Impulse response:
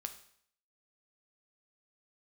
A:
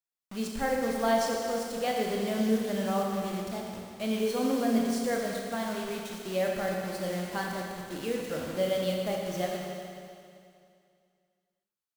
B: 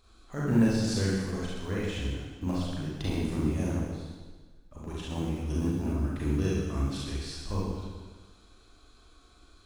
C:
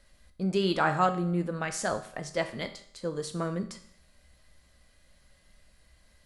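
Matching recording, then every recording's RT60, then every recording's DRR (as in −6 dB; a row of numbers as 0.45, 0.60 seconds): C; 2.4, 1.4, 0.65 seconds; −1.0, −7.0, 6.5 decibels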